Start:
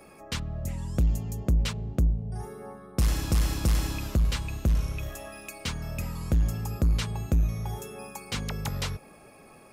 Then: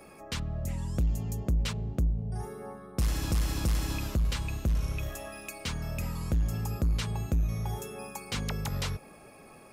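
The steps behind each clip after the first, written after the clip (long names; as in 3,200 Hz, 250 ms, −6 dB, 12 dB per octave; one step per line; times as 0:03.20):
brickwall limiter −22.5 dBFS, peak gain reduction 4 dB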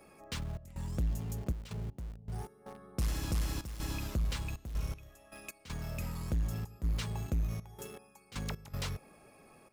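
gate pattern "xxx.xxxx.x..x.xx" 79 BPM −12 dB
in parallel at −10 dB: bit reduction 6 bits
on the sum: level −7 dB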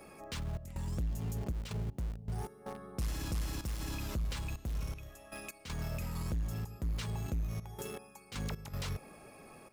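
brickwall limiter −35.5 dBFS, peak gain reduction 8 dB
level +5 dB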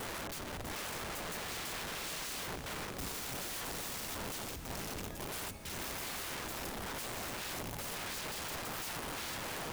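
wind on the microphone 200 Hz −32 dBFS
wrap-around overflow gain 40 dB
feedback delay with all-pass diffusion 508 ms, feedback 63%, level −13 dB
level +3.5 dB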